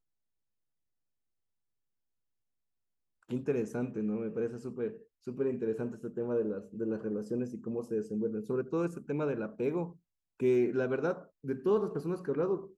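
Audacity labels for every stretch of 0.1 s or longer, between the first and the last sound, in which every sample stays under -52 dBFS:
5.030000	5.270000	silence
9.960000	10.400000	silence
11.260000	11.440000	silence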